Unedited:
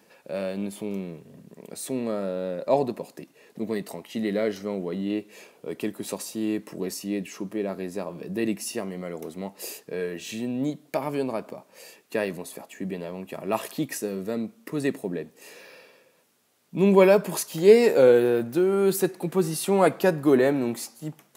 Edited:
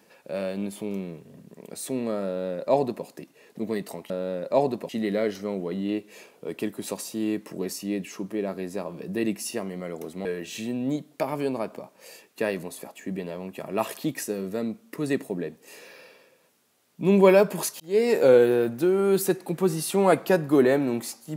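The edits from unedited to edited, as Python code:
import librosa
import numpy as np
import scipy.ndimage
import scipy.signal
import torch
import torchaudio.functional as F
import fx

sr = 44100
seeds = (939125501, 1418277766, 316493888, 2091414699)

y = fx.edit(x, sr, fx.duplicate(start_s=2.26, length_s=0.79, to_s=4.1),
    fx.cut(start_s=9.46, length_s=0.53),
    fx.fade_in_span(start_s=17.54, length_s=0.42), tone=tone)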